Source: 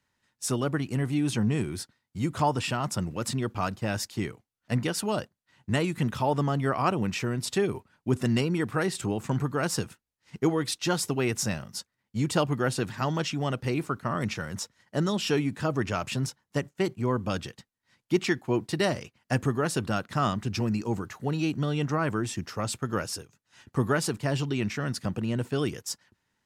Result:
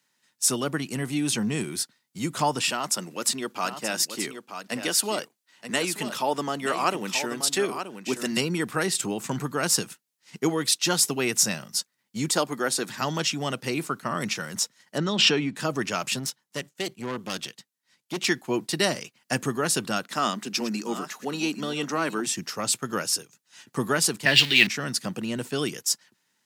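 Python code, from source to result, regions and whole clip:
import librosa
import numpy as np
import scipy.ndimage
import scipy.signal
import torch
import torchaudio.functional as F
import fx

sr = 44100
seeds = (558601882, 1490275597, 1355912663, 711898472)

y = fx.chain(x, sr, fx.highpass(hz=250.0, slope=12),
    fx.echo_single(ms=929, db=-9.0), at=(2.71, 8.37))
y = fx.chain(y, sr, fx.highpass(hz=230.0, slope=12),
    fx.peak_eq(hz=2800.0, db=-8.5, octaves=0.25), at=(12.28, 12.89))
y = fx.chain(y, sr, fx.lowpass(hz=3600.0, slope=12),
    fx.pre_swell(db_per_s=33.0), at=(14.98, 15.56))
y = fx.chain(y, sr, fx.dynamic_eq(hz=3300.0, q=1.3, threshold_db=-49.0, ratio=4.0, max_db=5),
    fx.tube_stage(drive_db=26.0, bias=0.75), at=(16.19, 18.25))
y = fx.chain(y, sr, fx.reverse_delay(ms=562, wet_db=-12),
    fx.highpass(hz=190.0, slope=24), at=(20.05, 22.27))
y = fx.chain(y, sr, fx.zero_step(step_db=-34.0),
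    fx.band_shelf(hz=2800.0, db=15.5, octaves=1.7),
    fx.band_widen(depth_pct=100), at=(24.25, 24.67))
y = scipy.signal.sosfilt(scipy.signal.butter(4, 150.0, 'highpass', fs=sr, output='sos'), y)
y = fx.high_shelf(y, sr, hz=2700.0, db=11.5)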